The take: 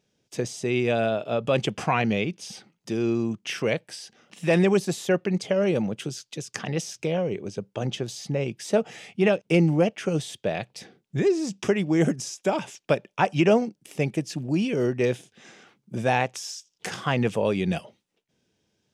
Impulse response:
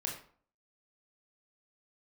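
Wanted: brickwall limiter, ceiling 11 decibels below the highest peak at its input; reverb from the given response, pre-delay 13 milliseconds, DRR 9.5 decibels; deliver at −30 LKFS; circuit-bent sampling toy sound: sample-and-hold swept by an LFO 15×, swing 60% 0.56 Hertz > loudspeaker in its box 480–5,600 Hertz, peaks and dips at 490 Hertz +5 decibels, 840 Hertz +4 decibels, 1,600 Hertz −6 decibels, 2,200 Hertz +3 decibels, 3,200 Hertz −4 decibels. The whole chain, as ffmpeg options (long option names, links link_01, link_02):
-filter_complex "[0:a]alimiter=limit=-19dB:level=0:latency=1,asplit=2[link_01][link_02];[1:a]atrim=start_sample=2205,adelay=13[link_03];[link_02][link_03]afir=irnorm=-1:irlink=0,volume=-11dB[link_04];[link_01][link_04]amix=inputs=2:normalize=0,acrusher=samples=15:mix=1:aa=0.000001:lfo=1:lforange=9:lforate=0.56,highpass=480,equalizer=frequency=490:width_type=q:width=4:gain=5,equalizer=frequency=840:width_type=q:width=4:gain=4,equalizer=frequency=1600:width_type=q:width=4:gain=-6,equalizer=frequency=2200:width_type=q:width=4:gain=3,equalizer=frequency=3200:width_type=q:width=4:gain=-4,lowpass=frequency=5600:width=0.5412,lowpass=frequency=5600:width=1.3066,volume=3dB"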